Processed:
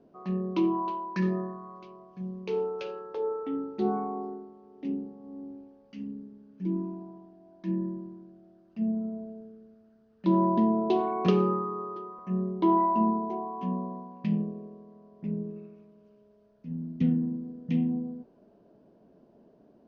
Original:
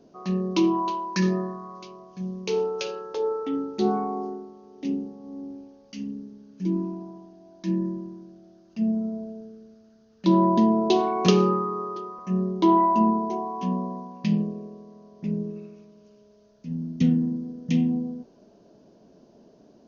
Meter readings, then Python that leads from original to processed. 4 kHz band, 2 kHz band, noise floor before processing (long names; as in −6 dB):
−13.0 dB, −7.0 dB, −56 dBFS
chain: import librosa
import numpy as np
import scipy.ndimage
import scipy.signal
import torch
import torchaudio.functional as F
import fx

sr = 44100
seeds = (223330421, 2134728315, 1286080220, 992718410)

y = scipy.signal.sosfilt(scipy.signal.butter(2, 2300.0, 'lowpass', fs=sr, output='sos'), x)
y = y * 10.0 ** (-4.5 / 20.0)